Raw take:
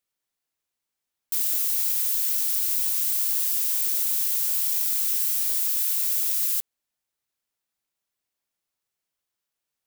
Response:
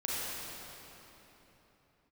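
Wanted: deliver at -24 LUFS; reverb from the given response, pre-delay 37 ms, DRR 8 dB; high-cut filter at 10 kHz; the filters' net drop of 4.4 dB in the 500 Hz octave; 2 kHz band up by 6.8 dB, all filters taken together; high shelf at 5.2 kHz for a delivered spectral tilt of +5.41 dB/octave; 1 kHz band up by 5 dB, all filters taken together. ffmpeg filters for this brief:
-filter_complex "[0:a]lowpass=10000,equalizer=f=500:t=o:g=-9,equalizer=f=1000:t=o:g=5.5,equalizer=f=2000:t=o:g=7,highshelf=f=5200:g=4,asplit=2[s0][s1];[1:a]atrim=start_sample=2205,adelay=37[s2];[s1][s2]afir=irnorm=-1:irlink=0,volume=0.188[s3];[s0][s3]amix=inputs=2:normalize=0,volume=1.33"

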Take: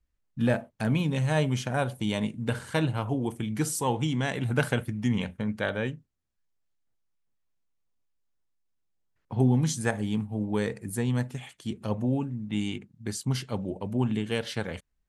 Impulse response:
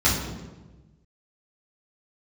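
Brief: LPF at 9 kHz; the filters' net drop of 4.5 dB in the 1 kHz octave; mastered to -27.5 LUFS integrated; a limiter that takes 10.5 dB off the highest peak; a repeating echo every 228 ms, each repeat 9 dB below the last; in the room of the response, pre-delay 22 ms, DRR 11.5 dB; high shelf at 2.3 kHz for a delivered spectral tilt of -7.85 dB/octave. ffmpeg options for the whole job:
-filter_complex "[0:a]lowpass=9000,equalizer=f=1000:t=o:g=-5,highshelf=f=2300:g=-6,alimiter=limit=0.075:level=0:latency=1,aecho=1:1:228|456|684|912:0.355|0.124|0.0435|0.0152,asplit=2[s0][s1];[1:a]atrim=start_sample=2205,adelay=22[s2];[s1][s2]afir=irnorm=-1:irlink=0,volume=0.0398[s3];[s0][s3]amix=inputs=2:normalize=0,volume=1.5"

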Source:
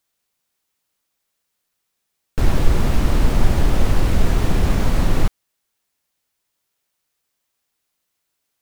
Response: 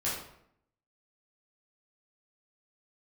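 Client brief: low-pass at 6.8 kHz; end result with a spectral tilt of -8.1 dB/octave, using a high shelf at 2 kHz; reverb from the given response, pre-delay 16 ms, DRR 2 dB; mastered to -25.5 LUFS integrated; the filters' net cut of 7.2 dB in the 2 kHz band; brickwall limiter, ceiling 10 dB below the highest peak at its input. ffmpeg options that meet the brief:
-filter_complex "[0:a]lowpass=6800,highshelf=f=2000:g=-8,equalizer=f=2000:t=o:g=-4.5,alimiter=limit=0.251:level=0:latency=1,asplit=2[s0][s1];[1:a]atrim=start_sample=2205,adelay=16[s2];[s1][s2]afir=irnorm=-1:irlink=0,volume=0.376[s3];[s0][s3]amix=inputs=2:normalize=0,volume=0.708"

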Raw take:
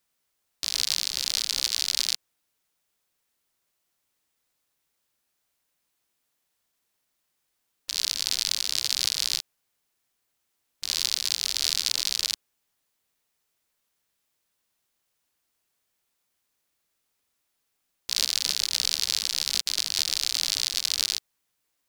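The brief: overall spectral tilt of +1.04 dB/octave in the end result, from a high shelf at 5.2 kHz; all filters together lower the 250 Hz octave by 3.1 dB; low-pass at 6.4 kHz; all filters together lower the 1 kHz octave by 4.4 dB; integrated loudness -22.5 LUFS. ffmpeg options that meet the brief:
-af "lowpass=6400,equalizer=f=250:t=o:g=-4,equalizer=f=1000:t=o:g=-6,highshelf=f=5200:g=4.5,volume=1.26"

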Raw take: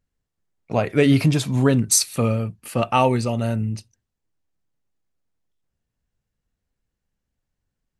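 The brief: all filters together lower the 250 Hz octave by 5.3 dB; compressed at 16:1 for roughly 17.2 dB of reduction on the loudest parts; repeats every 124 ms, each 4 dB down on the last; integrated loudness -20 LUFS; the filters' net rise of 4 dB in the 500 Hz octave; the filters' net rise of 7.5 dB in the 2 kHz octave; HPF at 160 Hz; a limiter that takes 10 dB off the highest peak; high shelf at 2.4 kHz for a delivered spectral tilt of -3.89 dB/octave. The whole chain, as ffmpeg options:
-af "highpass=160,equalizer=f=250:t=o:g=-7,equalizer=f=500:t=o:g=6,equalizer=f=2000:t=o:g=5.5,highshelf=f=2400:g=7,acompressor=threshold=0.0631:ratio=16,alimiter=limit=0.106:level=0:latency=1,aecho=1:1:124|248|372|496|620|744|868|992|1116:0.631|0.398|0.25|0.158|0.0994|0.0626|0.0394|0.0249|0.0157,volume=2.99"

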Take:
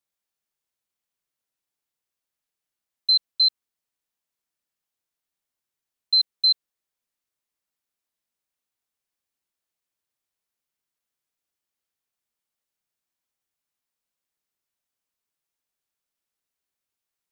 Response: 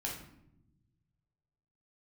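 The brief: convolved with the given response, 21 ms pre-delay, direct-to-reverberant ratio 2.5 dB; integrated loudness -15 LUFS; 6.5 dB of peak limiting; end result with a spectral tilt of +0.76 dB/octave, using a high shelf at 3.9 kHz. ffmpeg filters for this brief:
-filter_complex "[0:a]highshelf=f=3900:g=-6,alimiter=limit=0.0708:level=0:latency=1,asplit=2[s0][s1];[1:a]atrim=start_sample=2205,adelay=21[s2];[s1][s2]afir=irnorm=-1:irlink=0,volume=0.631[s3];[s0][s3]amix=inputs=2:normalize=0,volume=3.76"

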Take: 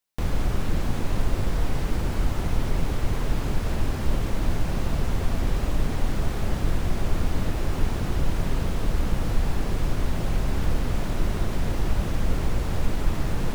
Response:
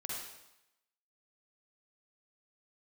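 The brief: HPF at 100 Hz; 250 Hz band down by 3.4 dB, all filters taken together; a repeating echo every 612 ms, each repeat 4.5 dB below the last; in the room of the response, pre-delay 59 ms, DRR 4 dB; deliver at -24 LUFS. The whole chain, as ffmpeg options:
-filter_complex "[0:a]highpass=100,equalizer=f=250:t=o:g=-4.5,aecho=1:1:612|1224|1836|2448|3060|3672|4284|4896|5508:0.596|0.357|0.214|0.129|0.0772|0.0463|0.0278|0.0167|0.01,asplit=2[s0][s1];[1:a]atrim=start_sample=2205,adelay=59[s2];[s1][s2]afir=irnorm=-1:irlink=0,volume=0.596[s3];[s0][s3]amix=inputs=2:normalize=0,volume=1.88"

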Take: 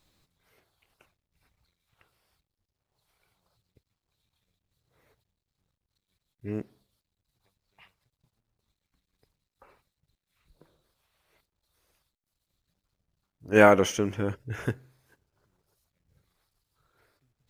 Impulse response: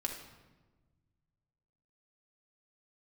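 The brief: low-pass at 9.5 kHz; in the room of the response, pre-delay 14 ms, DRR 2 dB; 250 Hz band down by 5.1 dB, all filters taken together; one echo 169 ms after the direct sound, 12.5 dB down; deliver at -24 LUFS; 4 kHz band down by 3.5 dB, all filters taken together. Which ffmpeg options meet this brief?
-filter_complex "[0:a]lowpass=9500,equalizer=f=250:t=o:g=-7,equalizer=f=4000:t=o:g=-5.5,aecho=1:1:169:0.237,asplit=2[s0][s1];[1:a]atrim=start_sample=2205,adelay=14[s2];[s1][s2]afir=irnorm=-1:irlink=0,volume=0.668[s3];[s0][s3]amix=inputs=2:normalize=0"

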